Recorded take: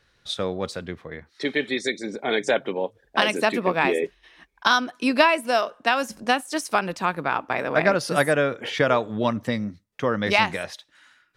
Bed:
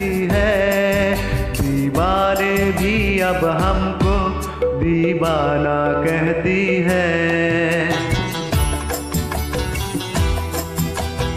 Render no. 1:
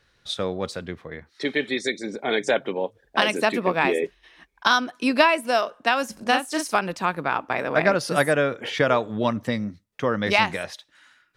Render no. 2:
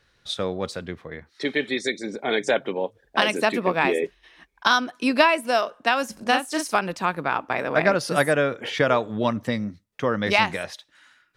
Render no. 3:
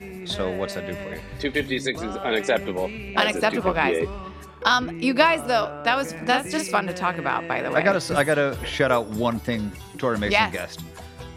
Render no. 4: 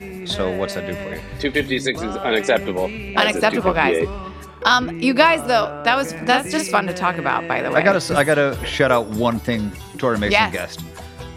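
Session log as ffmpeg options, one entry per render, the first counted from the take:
-filter_complex "[0:a]asettb=1/sr,asplit=3[a][b][c];[a]atrim=end=6.174[d];[b]atrim=start=6.17:end=6.77,asetpts=PTS-STARTPTS,afade=t=in:d=0.004:c=qsin,afade=t=out:st=0.596:d=0.004:c=qsin,asplit=2[e][f];[f]adelay=39,volume=-5dB[g];[e][g]amix=inputs=2:normalize=0,atrim=end_sample=26460[h];[c]atrim=start=6.766[i];[d][h]acrossfade=d=0.004:c1=hsin:c2=qsin[j];[j][i]acrossfade=d=0.004:c1=qsin:c2=hsin"
-af anull
-filter_complex "[1:a]volume=-17.5dB[a];[0:a][a]amix=inputs=2:normalize=0"
-af "volume=4.5dB,alimiter=limit=-1dB:level=0:latency=1"

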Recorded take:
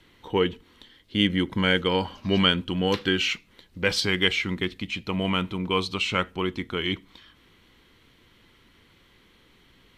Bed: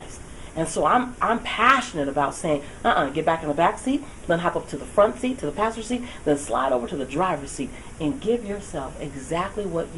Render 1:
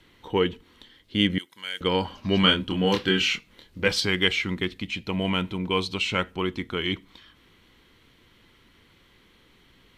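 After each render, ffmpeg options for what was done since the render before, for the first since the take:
-filter_complex "[0:a]asettb=1/sr,asplit=3[a][b][c];[a]atrim=end=1.384[d];[b]atrim=start=1.38:end=1.81,asetpts=PTS-STARTPTS,afade=t=in:d=0.004:c=qsin,afade=t=out:st=0.426:d=0.004:c=qsin,aderivative[e];[c]atrim=start=1.806[f];[d][e]acrossfade=d=0.004:c1=hsin:c2=qsin[g];[g][f]acrossfade=d=0.004:c1=qsin:c2=hsin,asettb=1/sr,asplit=3[h][i][j];[h]atrim=end=2.414[k];[i]atrim=start=2.41:end=3.88,asetpts=PTS-STARTPTS,afade=t=in:d=0.004:c=qsin,afade=t=out:st=1.466:d=0.004:c=qsin,asplit=2[l][m];[m]adelay=26,volume=-3.5dB[n];[l][n]amix=inputs=2:normalize=0,atrim=end_sample=64827[o];[j]atrim=start=3.876[p];[k][o]acrossfade=d=0.004:c1=hsin:c2=qsin[q];[q][p]acrossfade=d=0.004:c1=qsin:c2=hsin,asettb=1/sr,asplit=3[r][s][t];[r]atrim=end=4.924[u];[s]atrim=start=4.92:end=6.3,asetpts=PTS-STARTPTS,afade=t=in:d=0.004:c=qsin,afade=t=out:st=1.376:d=0.004:c=qsin,bandreject=f=1.2k:w=7.1[v];[t]atrim=start=6.296[w];[u][v]acrossfade=d=0.004:c1=hsin:c2=qsin[x];[x][w]acrossfade=d=0.004:c1=qsin:c2=hsin"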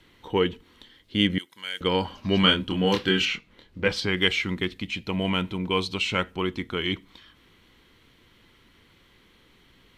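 -filter_complex "[0:a]asettb=1/sr,asplit=3[a][b][c];[a]atrim=end=3.254[d];[b]atrim=start=3.25:end=4.17,asetpts=PTS-STARTPTS,afade=t=in:d=0.004:c=qsin,afade=t=out:st=0.916:d=0.004:c=qsin,highshelf=f=4.9k:g=-11.5[e];[c]atrim=start=4.166[f];[d][e]acrossfade=d=0.004:c1=hsin:c2=qsin[g];[g][f]acrossfade=d=0.004:c1=qsin:c2=hsin"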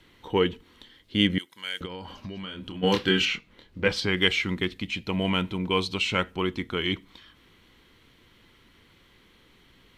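-filter_complex "[0:a]asplit=3[a][b][c];[a]afade=t=out:st=1.84:d=0.02[d];[b]acompressor=threshold=-33dB:ratio=16:attack=3.2:release=140:knee=1:detection=peak,afade=t=in:st=1.84:d=0.02,afade=t=out:st=2.82:d=0.02[e];[c]afade=t=in:st=2.82:d=0.02[f];[d][e][f]amix=inputs=3:normalize=0"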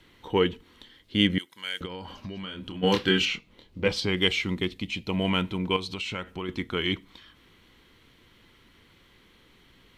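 -filter_complex "[0:a]asettb=1/sr,asplit=3[a][b][c];[a]atrim=end=3.184[d];[b]atrim=start=3.18:end=5.14,asetpts=PTS-STARTPTS,afade=t=in:d=0.004:c=qsin,afade=t=out:st=1.956:d=0.004:c=qsin,equalizer=f=1.6k:t=o:w=0.67:g=-7[e];[c]atrim=start=5.136[f];[d][e]acrossfade=d=0.004:c1=hsin:c2=qsin[g];[g][f]acrossfade=d=0.004:c1=qsin:c2=hsin,asettb=1/sr,asplit=3[h][i][j];[h]atrim=end=5.764[k];[i]atrim=start=5.76:end=6.49,asetpts=PTS-STARTPTS,afade=t=in:d=0.004:c=qsin,afade=t=out:st=0.726:d=0.004:c=qsin,acompressor=threshold=-31dB:ratio=3:attack=3.2:release=140:knee=1:detection=peak[l];[j]atrim=start=6.486[m];[k][l]acrossfade=d=0.004:c1=hsin:c2=qsin[n];[n][m]acrossfade=d=0.004:c1=qsin:c2=hsin"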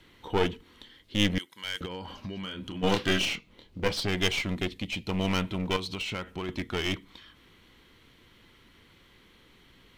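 -af "aeval=exprs='clip(val(0),-1,0.0282)':c=same"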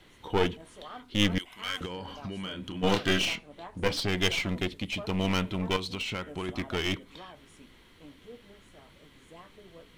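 -filter_complex "[1:a]volume=-25.5dB[a];[0:a][a]amix=inputs=2:normalize=0"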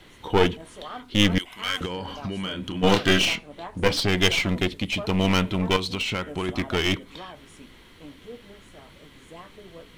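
-af "volume=6.5dB,alimiter=limit=-3dB:level=0:latency=1"

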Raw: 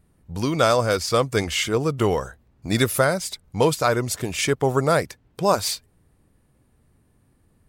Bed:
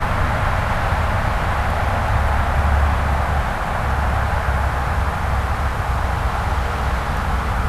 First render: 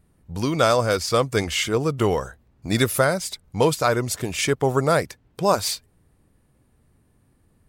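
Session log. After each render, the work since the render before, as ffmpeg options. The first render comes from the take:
-af anull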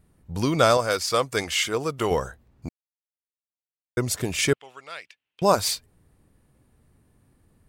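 -filter_complex "[0:a]asettb=1/sr,asplit=3[a][b][c];[a]atrim=end=0.774[d];[b]atrim=start=0.77:end=2.11,asetpts=PTS-STARTPTS,afade=t=in:d=0.004:c=qsin,afade=t=out:st=1.336:d=0.004:c=qsin,lowshelf=f=340:g=-11[e];[c]atrim=start=2.106[f];[d][e]acrossfade=d=0.004:c1=hsin:c2=qsin[g];[g][f]acrossfade=d=0.004:c1=qsin:c2=hsin,asettb=1/sr,asplit=3[h][i][j];[h]atrim=end=4.534[k];[i]atrim=start=4.53:end=5.42,asetpts=PTS-STARTPTS,afade=t=in:d=0.004:c=qsin,afade=t=out:st=0.886:d=0.004:c=qsin,bandpass=f=2.8k:t=q:w=4[l];[j]atrim=start=5.416[m];[k][l]acrossfade=d=0.004:c1=hsin:c2=qsin[n];[n][m]acrossfade=d=0.004:c1=qsin:c2=hsin,asplit=3[o][p][q];[o]atrim=end=2.69,asetpts=PTS-STARTPTS,afade=t=out:st=2.686:d=0.004:c=hsin[r];[p]atrim=start=2.69:end=3.97,asetpts=PTS-STARTPTS,volume=0[s];[q]atrim=start=3.97,asetpts=PTS-STARTPTS,afade=t=in:d=0.004:c=hsin[t];[r][s][t]concat=n=3:v=0:a=1"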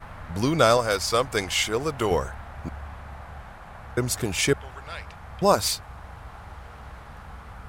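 -filter_complex "[1:a]volume=-21.5dB[a];[0:a][a]amix=inputs=2:normalize=0"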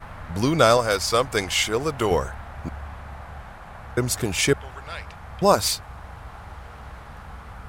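-af "volume=2dB"

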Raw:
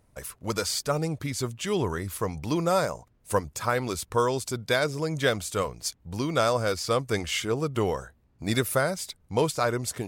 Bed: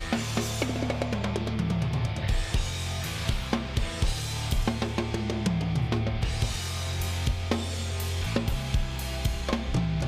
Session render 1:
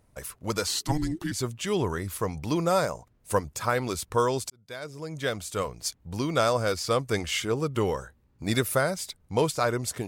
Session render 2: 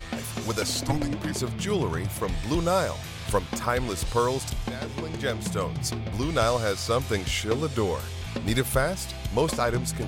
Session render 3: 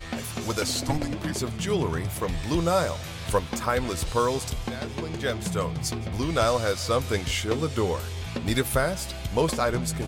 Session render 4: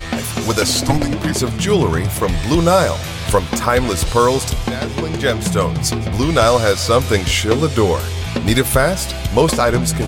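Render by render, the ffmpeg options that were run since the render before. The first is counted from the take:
-filter_complex "[0:a]asettb=1/sr,asplit=3[a][b][c];[a]atrim=end=0.674[d];[b]atrim=start=0.67:end=1.32,asetpts=PTS-STARTPTS,afade=t=in:d=0.004:c=qsin,afade=t=out:st=0.646:d=0.004:c=qsin,afreqshift=-450[e];[c]atrim=start=1.316[f];[d][e]acrossfade=d=0.004:c1=hsin:c2=qsin[g];[g][f]acrossfade=d=0.004:c1=qsin:c2=hsin,asettb=1/sr,asplit=3[h][i][j];[h]atrim=end=7.544[k];[i]atrim=start=7.54:end=8.45,asetpts=PTS-STARTPTS,afade=t=in:d=0.004:c=qsin,afade=t=out:st=0.906:d=0.004:c=qsin,asuperstop=centerf=690:order=4:qfactor=6.7[l];[j]atrim=start=8.446[m];[k][l]acrossfade=d=0.004:c1=hsin:c2=qsin[n];[n][m]acrossfade=d=0.004:c1=qsin:c2=hsin,asplit=2[o][p];[o]atrim=end=4.5,asetpts=PTS-STARTPTS,afade=t=out:st=4.496:d=0.004:c=hsin[q];[p]atrim=start=4.5,asetpts=PTS-STARTPTS,afade=t=in:d=1.37[r];[q][r]concat=n=2:v=0:a=1"
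-filter_complex "[1:a]volume=-5dB[a];[0:a][a]amix=inputs=2:normalize=0"
-filter_complex "[0:a]asplit=2[a][b];[b]adelay=12,volume=-11.5dB[c];[a][c]amix=inputs=2:normalize=0,aecho=1:1:167|334|501|668:0.0631|0.0347|0.0191|0.0105"
-af "volume=11dB,alimiter=limit=-2dB:level=0:latency=1"

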